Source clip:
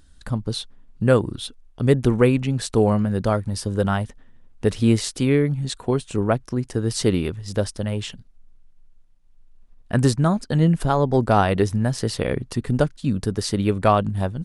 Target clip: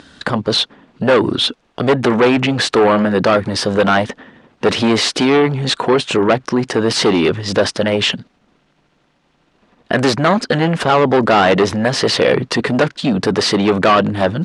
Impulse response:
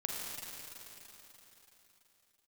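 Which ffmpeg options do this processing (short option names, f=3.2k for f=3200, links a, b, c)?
-af "asoftclip=type=tanh:threshold=-13dB,apsyclip=30dB,highpass=240,lowpass=3.9k,volume=-7dB"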